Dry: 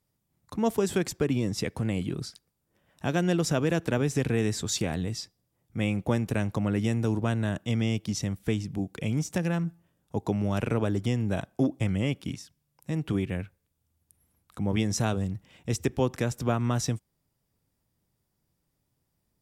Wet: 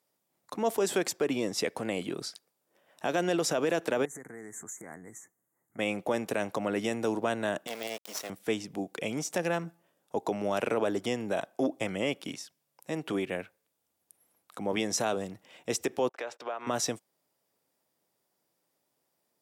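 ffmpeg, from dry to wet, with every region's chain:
-filter_complex "[0:a]asettb=1/sr,asplit=3[a][b][c];[a]atrim=end=4.054[d];[b]atrim=start=4.05:end=5.79,asetpts=PTS-STARTPTS,afade=t=in:d=0.004:c=qsin,afade=t=out:st=1.736:d=0.004:c=qsin,equalizer=f=580:w=1.4:g=-10,acompressor=threshold=-37dB:ratio=8:attack=3.2:release=140:knee=1:detection=peak,asuperstop=centerf=3700:order=20:qfactor=0.89[e];[c]atrim=start=5.786[f];[d][e]acrossfade=d=0.004:c1=hsin:c2=qsin[g];[g][f]acrossfade=d=0.004:c1=qsin:c2=hsin,asettb=1/sr,asplit=3[h][i][j];[h]atrim=end=7.674[k];[i]atrim=start=7.67:end=8.3,asetpts=PTS-STARTPTS,afade=t=in:d=0.004:c=qsin,afade=t=out:st=0.626:d=0.004:c=qsin,highpass=380,acrusher=bits=5:dc=4:mix=0:aa=0.000001[l];[j]atrim=start=8.296[m];[k][l]acrossfade=d=0.004:c1=hsin:c2=qsin[n];[n][m]acrossfade=d=0.004:c1=qsin:c2=hsin,asettb=1/sr,asplit=3[o][p][q];[o]atrim=end=16.094[r];[p]atrim=start=16.09:end=16.67,asetpts=PTS-STARTPTS,afade=t=in:d=0.004:c=qsin,afade=t=out:st=0.576:d=0.004:c=qsin,agate=range=-37dB:threshold=-44dB:ratio=16:release=100:detection=peak,acrossover=split=410 4300:gain=0.0708 1 0.1[s][t][u];[s][t][u]amix=inputs=3:normalize=0,acompressor=threshold=-36dB:ratio=4:attack=3.2:release=140:knee=1:detection=peak[v];[q]atrim=start=16.666[w];[r][v]acrossfade=d=0.004:c1=hsin:c2=qsin[x];[x][w]acrossfade=d=0.004:c1=qsin:c2=hsin,highpass=360,equalizer=f=620:w=1.5:g=4,alimiter=limit=-21dB:level=0:latency=1:release=22,volume=2.5dB"

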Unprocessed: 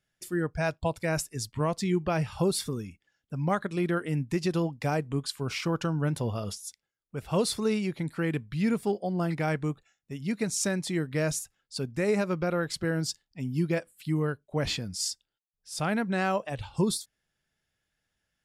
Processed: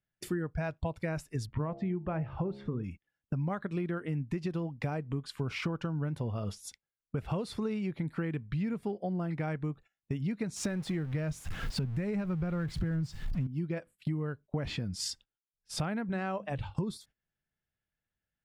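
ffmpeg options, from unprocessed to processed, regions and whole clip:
-filter_complex "[0:a]asettb=1/sr,asplit=3[a][b][c];[a]atrim=end=1.464[d];[b]atrim=start=1.46:end=2.84,asetpts=PTS-STARTPTS,afade=t=in:d=0.004:c=qsin,afade=t=out:st=1.376:d=0.004:c=qsin,lowpass=1.9k,bandreject=f=68.17:t=h:w=4,bandreject=f=136.34:t=h:w=4,bandreject=f=204.51:t=h:w=4,bandreject=f=272.68:t=h:w=4,bandreject=f=340.85:t=h:w=4,bandreject=f=409.02:t=h:w=4,bandreject=f=477.19:t=h:w=4,bandreject=f=545.36:t=h:w=4,bandreject=f=613.53:t=h:w=4,bandreject=f=681.7:t=h:w=4,bandreject=f=749.87:t=h:w=4,bandreject=f=818.04:t=h:w=4,bandreject=f=886.21:t=h:w=4[e];[c]atrim=start=2.836[f];[d][e]acrossfade=d=0.004:c1=hsin:c2=qsin[g];[g][f]acrossfade=d=0.004:c1=qsin:c2=hsin,asettb=1/sr,asplit=3[h][i][j];[h]atrim=end=10.564[k];[i]atrim=start=10.56:end=13.47,asetpts=PTS-STARTPTS,afade=t=in:d=0.004:c=qsin,afade=t=out:st=2.906:d=0.004:c=qsin,aeval=exprs='val(0)+0.5*0.0133*sgn(val(0))':c=same,asubboost=boost=6.5:cutoff=190[l];[j]atrim=start=13.466[m];[k][l]acrossfade=d=0.004:c1=hsin:c2=qsin[n];[n][m]acrossfade=d=0.004:c1=qsin:c2=hsin,asettb=1/sr,asplit=3[o][p][q];[o]atrim=end=16.094[r];[p]atrim=start=16.09:end=16.75,asetpts=PTS-STARTPTS,afade=t=in:d=0.004:c=qsin,afade=t=out:st=0.656:d=0.004:c=qsin,bandreject=f=50:t=h:w=6,bandreject=f=100:t=h:w=6,bandreject=f=150:t=h:w=6,bandreject=f=200:t=h:w=6,bandreject=f=250:t=h:w=6,bandreject=f=300:t=h:w=6,agate=range=-33dB:threshold=-41dB:ratio=3:release=100:detection=peak[s];[q]atrim=start=16.746[t];[r][s]acrossfade=d=0.004:c1=hsin:c2=qsin[u];[u][t]acrossfade=d=0.004:c1=qsin:c2=hsin,agate=range=-19dB:threshold=-47dB:ratio=16:detection=peak,bass=f=250:g=4,treble=f=4k:g=-13,acompressor=threshold=-39dB:ratio=12,volume=8.5dB"

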